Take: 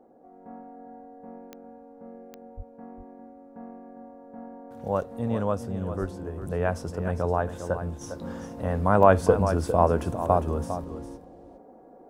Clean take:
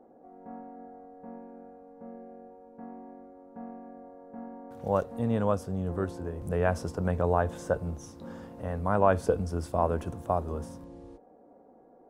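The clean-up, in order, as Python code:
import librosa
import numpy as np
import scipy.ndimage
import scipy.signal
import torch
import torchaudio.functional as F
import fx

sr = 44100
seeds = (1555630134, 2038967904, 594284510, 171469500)

y = fx.fix_declick_ar(x, sr, threshold=10.0)
y = fx.highpass(y, sr, hz=140.0, slope=24, at=(2.56, 2.68), fade=0.02)
y = fx.highpass(y, sr, hz=140.0, slope=24, at=(6.0, 6.12), fade=0.02)
y = fx.fix_echo_inverse(y, sr, delay_ms=404, level_db=-10.5)
y = fx.gain(y, sr, db=fx.steps((0.0, 0.0), (8.01, -6.0)))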